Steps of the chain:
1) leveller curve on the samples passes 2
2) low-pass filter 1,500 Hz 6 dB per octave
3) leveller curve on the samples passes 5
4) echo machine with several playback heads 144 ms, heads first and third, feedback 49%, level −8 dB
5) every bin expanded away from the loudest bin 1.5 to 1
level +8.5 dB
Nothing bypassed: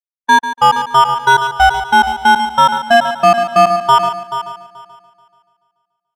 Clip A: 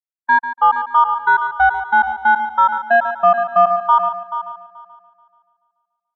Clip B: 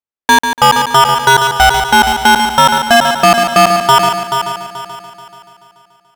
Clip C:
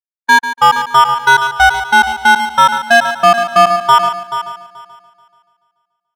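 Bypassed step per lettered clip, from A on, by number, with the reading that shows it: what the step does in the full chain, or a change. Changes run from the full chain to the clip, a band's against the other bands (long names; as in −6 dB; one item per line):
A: 3, change in crest factor +2.5 dB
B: 5, 8 kHz band +7.0 dB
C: 2, 2 kHz band +5.0 dB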